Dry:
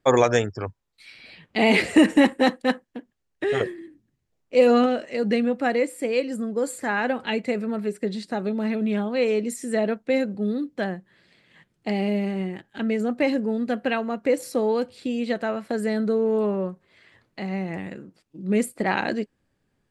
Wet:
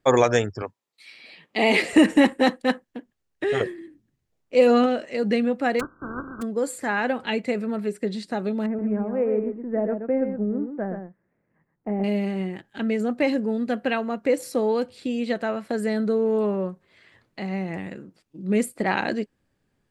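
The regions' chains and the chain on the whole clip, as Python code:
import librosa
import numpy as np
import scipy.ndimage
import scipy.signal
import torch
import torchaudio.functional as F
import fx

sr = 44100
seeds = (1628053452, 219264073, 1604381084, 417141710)

y = fx.chain(x, sr, fx.highpass(hz=250.0, slope=12),
    fx.notch(hz=1500.0, q=9.7), at=(0.62, 1.93))
y = fx.spec_flatten(y, sr, power=0.28, at=(5.79, 6.41), fade=0.02)
y = fx.brickwall_lowpass(y, sr, high_hz=1600.0, at=(5.79, 6.41), fade=0.02)
y = fx.band_shelf(y, sr, hz=640.0, db=-11.5, octaves=1.2, at=(5.79, 6.41), fade=0.02)
y = fx.chain(y, sr, fx.law_mismatch(coded='A'),
    fx.gaussian_blur(sigma=6.2),
    fx.echo_single(ms=125, db=-7.0), at=(8.66, 12.04))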